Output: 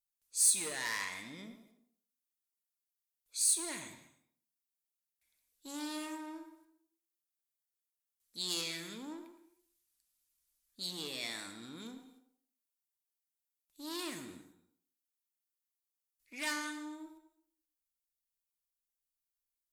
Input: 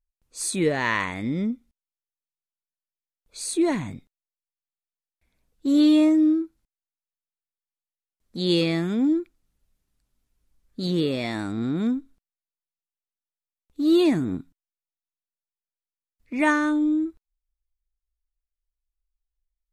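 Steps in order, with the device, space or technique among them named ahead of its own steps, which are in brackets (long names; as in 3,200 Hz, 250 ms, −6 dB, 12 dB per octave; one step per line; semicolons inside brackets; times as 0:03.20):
rockabilly slapback (tube saturation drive 20 dB, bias 0.25; tape delay 114 ms, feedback 31%, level −7.5 dB, low-pass 1,200 Hz)
first-order pre-emphasis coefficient 0.97
reverb whose tail is shaped and stops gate 350 ms falling, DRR 8.5 dB
level +3 dB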